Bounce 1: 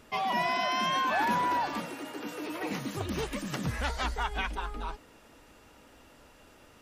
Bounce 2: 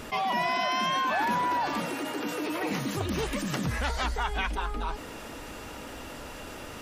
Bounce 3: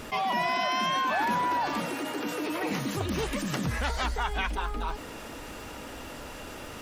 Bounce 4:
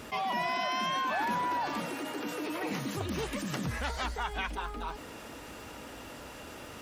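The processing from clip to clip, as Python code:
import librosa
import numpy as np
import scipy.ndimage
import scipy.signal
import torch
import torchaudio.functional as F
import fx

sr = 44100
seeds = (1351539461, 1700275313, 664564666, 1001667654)

y1 = fx.env_flatten(x, sr, amount_pct=50)
y2 = fx.dmg_crackle(y1, sr, seeds[0], per_s=170.0, level_db=-42.0)
y3 = scipy.signal.sosfilt(scipy.signal.butter(2, 52.0, 'highpass', fs=sr, output='sos'), y2)
y3 = F.gain(torch.from_numpy(y3), -4.0).numpy()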